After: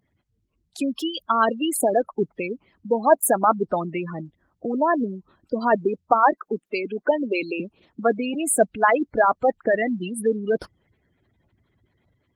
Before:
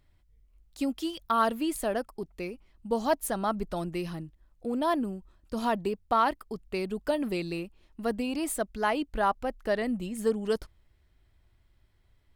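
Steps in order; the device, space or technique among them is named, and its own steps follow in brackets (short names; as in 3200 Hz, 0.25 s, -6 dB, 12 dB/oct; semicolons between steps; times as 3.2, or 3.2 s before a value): 6.32–7.6 HPF 220 Hz 24 dB/oct; harmonic-percussive split percussive +9 dB; noise-suppressed video call (HPF 130 Hz 12 dB/oct; spectral gate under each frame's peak -15 dB strong; AGC gain up to 5 dB; Opus 24 kbps 48000 Hz)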